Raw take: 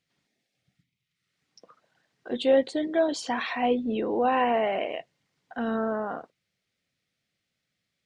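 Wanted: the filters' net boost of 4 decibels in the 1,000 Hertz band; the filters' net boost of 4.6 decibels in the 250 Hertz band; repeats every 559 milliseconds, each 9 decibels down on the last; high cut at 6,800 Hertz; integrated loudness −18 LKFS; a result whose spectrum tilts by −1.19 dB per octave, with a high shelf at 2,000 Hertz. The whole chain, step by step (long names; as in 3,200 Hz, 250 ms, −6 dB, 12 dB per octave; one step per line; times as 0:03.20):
low-pass filter 6,800 Hz
parametric band 250 Hz +5 dB
parametric band 1,000 Hz +6 dB
high-shelf EQ 2,000 Hz −3.5 dB
repeating echo 559 ms, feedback 35%, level −9 dB
level +6 dB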